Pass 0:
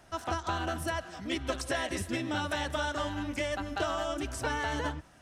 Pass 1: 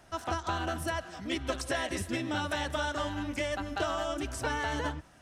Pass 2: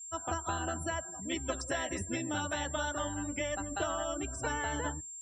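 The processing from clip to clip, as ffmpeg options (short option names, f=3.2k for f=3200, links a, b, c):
-af anull
-af "aeval=exprs='val(0)+0.01*sin(2*PI*7400*n/s)':c=same,afftdn=nr=33:nf=-41,volume=-2.5dB"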